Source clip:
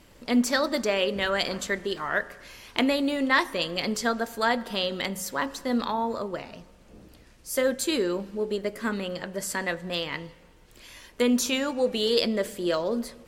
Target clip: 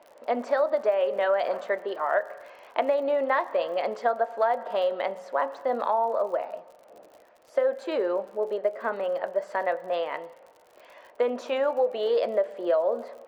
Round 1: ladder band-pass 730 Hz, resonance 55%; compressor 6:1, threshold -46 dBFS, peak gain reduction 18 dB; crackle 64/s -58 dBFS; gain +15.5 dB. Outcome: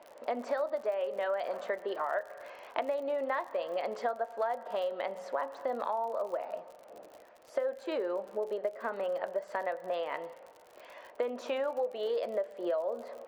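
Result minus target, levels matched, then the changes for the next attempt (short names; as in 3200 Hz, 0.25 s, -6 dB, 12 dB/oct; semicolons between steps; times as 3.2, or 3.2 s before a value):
compressor: peak gain reduction +8.5 dB
change: compressor 6:1, threshold -35.5 dBFS, peak gain reduction 9 dB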